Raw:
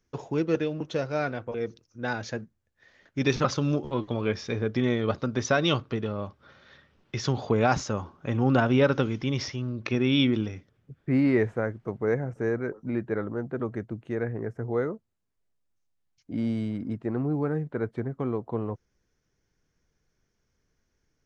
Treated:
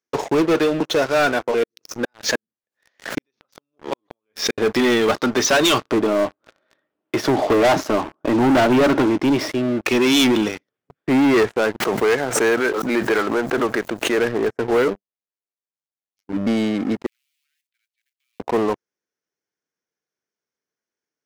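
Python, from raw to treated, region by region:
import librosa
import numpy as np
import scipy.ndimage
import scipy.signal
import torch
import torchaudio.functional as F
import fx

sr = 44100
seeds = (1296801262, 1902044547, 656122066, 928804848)

y = fx.chain(x, sr, fx.gate_flip(shuts_db=-20.0, range_db=-41),
    fx.pre_swell(db_per_s=140.0), at=(1.57, 4.58))
y = fx.chain(y, sr, fx.lowpass(hz=1200.0, slope=6),
    fx.small_body(hz=(310.0, 630.0), ring_ms=60, db=10), at=(5.91, 9.83))
y = fx.chain(y, sr, fx.tilt_eq(slope=2.5),
    fx.pre_swell(db_per_s=41.0), at=(11.8, 14.18))
y = fx.chain(y, sr, fx.robotise(hz=99.2),
    fx.env_lowpass_down(base_hz=460.0, full_db=-35.0), at=(14.88, 16.47))
y = fx.chain(y, sr, fx.law_mismatch(coded='A'),
    fx.steep_highpass(hz=2400.0, slope=36),
    fx.level_steps(step_db=11), at=(17.06, 18.4))
y = scipy.signal.sosfilt(scipy.signal.butter(2, 340.0, 'highpass', fs=sr, output='sos'), y)
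y = fx.dynamic_eq(y, sr, hz=520.0, q=6.6, threshold_db=-46.0, ratio=4.0, max_db=-7)
y = fx.leveller(y, sr, passes=5)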